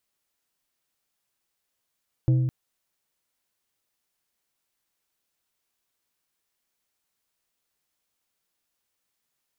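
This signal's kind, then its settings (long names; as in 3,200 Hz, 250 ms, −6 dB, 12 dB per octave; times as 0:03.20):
struck glass plate, length 0.21 s, lowest mode 128 Hz, decay 1.65 s, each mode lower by 10.5 dB, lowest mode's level −15.5 dB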